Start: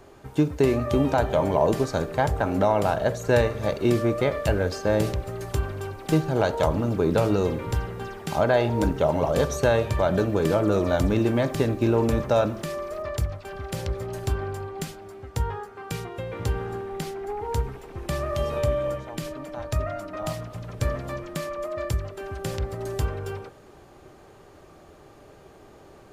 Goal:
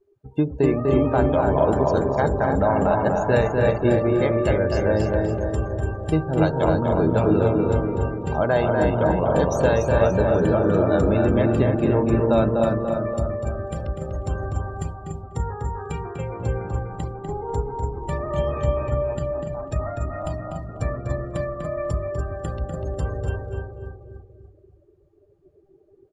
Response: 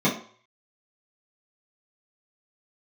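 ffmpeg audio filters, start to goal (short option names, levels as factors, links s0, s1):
-filter_complex "[0:a]asplit=2[s0][s1];[s1]aecho=0:1:290|580|870|1160|1450|1740|2030:0.596|0.322|0.174|0.0938|0.0506|0.0274|0.0148[s2];[s0][s2]amix=inputs=2:normalize=0,afftdn=nr=32:nf=-35,asplit=2[s3][s4];[s4]adelay=246,lowpass=f=2500:p=1,volume=0.668,asplit=2[s5][s6];[s6]adelay=246,lowpass=f=2500:p=1,volume=0.16,asplit=2[s7][s8];[s8]adelay=246,lowpass=f=2500:p=1,volume=0.16[s9];[s5][s7][s9]amix=inputs=3:normalize=0[s10];[s3][s10]amix=inputs=2:normalize=0"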